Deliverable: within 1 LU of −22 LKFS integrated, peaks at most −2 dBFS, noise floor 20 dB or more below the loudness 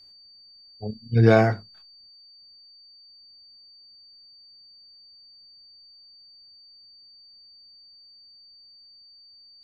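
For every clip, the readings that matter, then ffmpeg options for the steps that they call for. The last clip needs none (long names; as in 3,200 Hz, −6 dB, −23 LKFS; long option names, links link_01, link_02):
interfering tone 4,600 Hz; level of the tone −49 dBFS; integrated loudness −21.5 LKFS; sample peak −4.5 dBFS; target loudness −22.0 LKFS
→ -af "bandreject=frequency=4600:width=30"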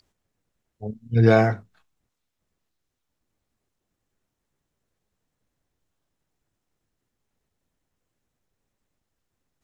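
interfering tone none found; integrated loudness −19.5 LKFS; sample peak −4.5 dBFS; target loudness −22.0 LKFS
→ -af "volume=-2.5dB"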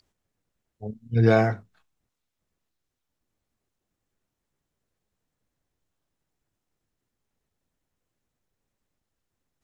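integrated loudness −22.0 LKFS; sample peak −7.0 dBFS; background noise floor −83 dBFS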